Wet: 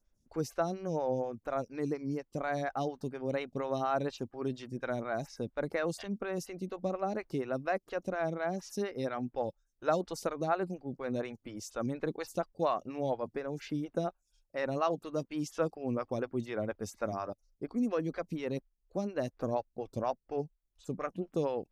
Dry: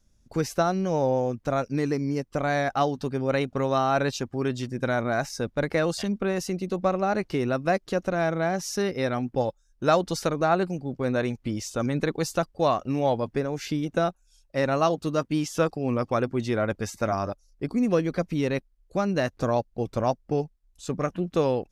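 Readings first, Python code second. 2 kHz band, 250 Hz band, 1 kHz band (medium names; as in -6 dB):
-10.0 dB, -9.0 dB, -9.0 dB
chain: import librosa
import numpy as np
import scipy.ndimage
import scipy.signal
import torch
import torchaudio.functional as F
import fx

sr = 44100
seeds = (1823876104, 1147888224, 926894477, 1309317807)

y = fx.stagger_phaser(x, sr, hz=4.2)
y = F.gain(torch.from_numpy(y), -6.5).numpy()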